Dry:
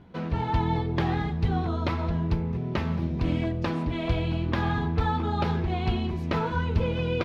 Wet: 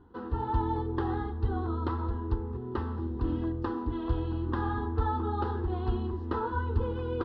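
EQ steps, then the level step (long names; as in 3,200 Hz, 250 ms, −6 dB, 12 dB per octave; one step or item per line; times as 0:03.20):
high-frequency loss of the air 320 metres
phaser with its sweep stopped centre 620 Hz, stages 6
0.0 dB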